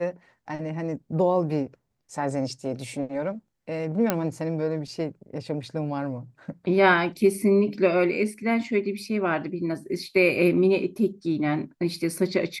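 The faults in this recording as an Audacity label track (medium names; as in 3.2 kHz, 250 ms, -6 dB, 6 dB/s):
4.100000	4.100000	pop -7 dBFS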